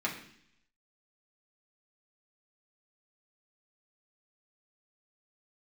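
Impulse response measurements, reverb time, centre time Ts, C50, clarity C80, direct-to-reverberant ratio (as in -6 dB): 0.65 s, 24 ms, 8.0 dB, 11.0 dB, -3.5 dB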